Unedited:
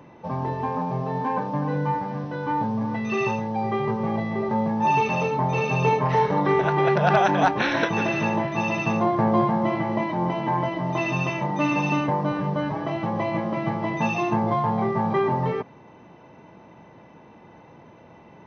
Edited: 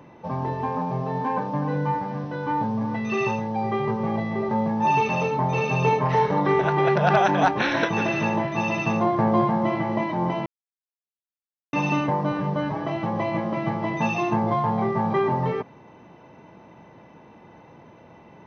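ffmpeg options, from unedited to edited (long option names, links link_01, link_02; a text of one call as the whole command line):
ffmpeg -i in.wav -filter_complex "[0:a]asplit=3[link_01][link_02][link_03];[link_01]atrim=end=10.46,asetpts=PTS-STARTPTS,afade=type=out:start_time=10.456:duration=0.004:curve=hsin[link_04];[link_02]atrim=start=10.46:end=11.73,asetpts=PTS-STARTPTS,volume=0[link_05];[link_03]atrim=start=11.73,asetpts=PTS-STARTPTS,afade=type=in:duration=0.004:curve=hsin[link_06];[link_04][link_05][link_06]concat=n=3:v=0:a=1" out.wav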